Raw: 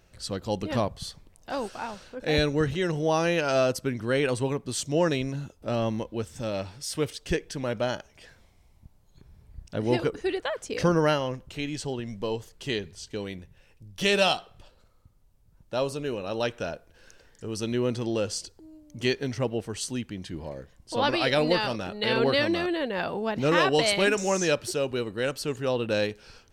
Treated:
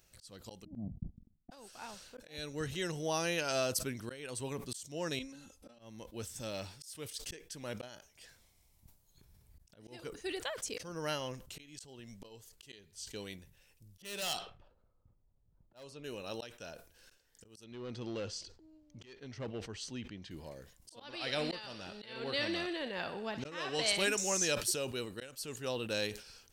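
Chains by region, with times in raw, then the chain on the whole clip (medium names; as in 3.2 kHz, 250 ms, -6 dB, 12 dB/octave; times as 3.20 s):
0.65–1.51 s: Chebyshev low-pass 750 Hz, order 5 + gate -47 dBFS, range -52 dB + resonant low shelf 340 Hz +13.5 dB, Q 3
5.19–5.79 s: low-pass 11 kHz + comb 3.8 ms, depth 92% + compression 2:1, threshold -44 dBFS
14.02–16.04 s: level-controlled noise filter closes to 810 Hz, open at -20 dBFS + hard clipper -21.5 dBFS
17.64–20.31 s: hard clipper -23 dBFS + distance through air 180 m
21.04–23.97 s: distance through air 60 m + thinning echo 62 ms, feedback 68%, high-pass 850 Hz, level -11 dB
whole clip: pre-emphasis filter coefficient 0.8; slow attack 470 ms; decay stretcher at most 110 dB/s; trim +2.5 dB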